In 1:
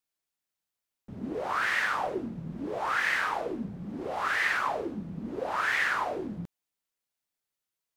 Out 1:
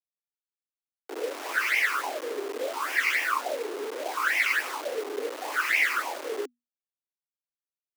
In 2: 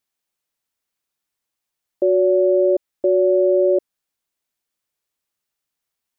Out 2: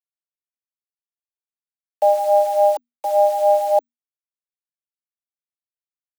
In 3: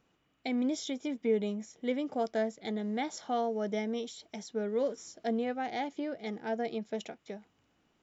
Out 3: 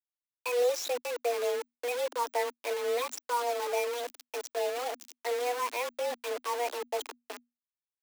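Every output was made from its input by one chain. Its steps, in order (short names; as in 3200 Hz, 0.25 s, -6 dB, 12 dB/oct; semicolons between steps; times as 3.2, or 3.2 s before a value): phaser stages 8, 3.5 Hz, lowest notch 420–1200 Hz; bit-crush 7-bit; frequency shift +240 Hz; gain +5 dB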